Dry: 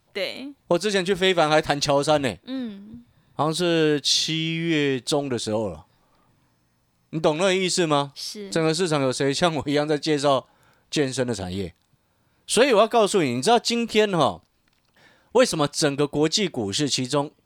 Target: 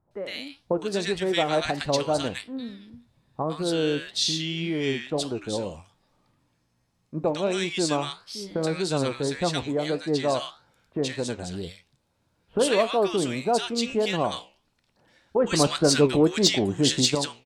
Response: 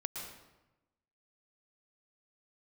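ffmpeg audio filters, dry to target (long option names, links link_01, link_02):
-filter_complex "[0:a]lowpass=11000,asettb=1/sr,asplit=3[link_01][link_02][link_03];[link_01]atrim=end=15.444[link_04];[link_02]atrim=start=15.44:end=17.15,asetpts=PTS-STARTPTS,afade=type=in:duration=0.004:curve=qsin,afade=type=out:start_time=1.706:duration=0.004:curve=qsin,acontrast=82[link_05];[link_03]atrim=start=17.146[link_06];[link_04][link_05]acrossfade=duration=0.004:curve1=hsin:curve2=qsin[link_07];[link_07][link_06]acrossfade=duration=0.004:curve1=qsin:curve2=hsin,flanger=delay=9.7:depth=7.8:regen=79:speed=1.7:shape=triangular,acrossover=split=1300[link_08][link_09];[link_09]adelay=110[link_10];[link_08][link_10]amix=inputs=2:normalize=0"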